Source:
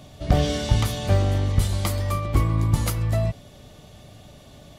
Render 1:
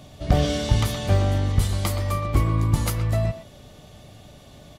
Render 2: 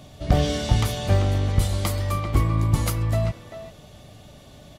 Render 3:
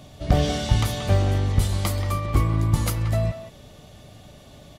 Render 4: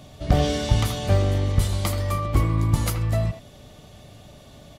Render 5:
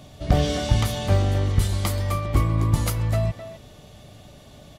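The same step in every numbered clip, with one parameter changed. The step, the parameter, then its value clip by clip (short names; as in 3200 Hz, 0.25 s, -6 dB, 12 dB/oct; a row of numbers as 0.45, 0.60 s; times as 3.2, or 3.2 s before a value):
speakerphone echo, time: 120, 390, 180, 80, 260 ms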